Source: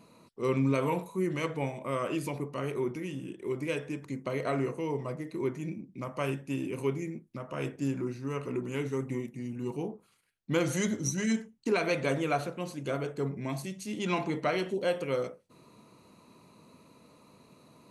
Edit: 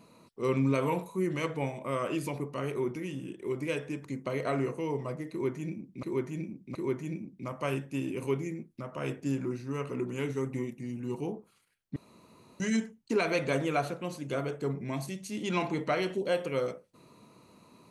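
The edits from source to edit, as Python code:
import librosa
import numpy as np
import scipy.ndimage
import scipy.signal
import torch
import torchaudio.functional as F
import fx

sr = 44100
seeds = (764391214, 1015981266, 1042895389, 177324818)

y = fx.edit(x, sr, fx.repeat(start_s=5.31, length_s=0.72, count=3),
    fx.room_tone_fill(start_s=10.52, length_s=0.64), tone=tone)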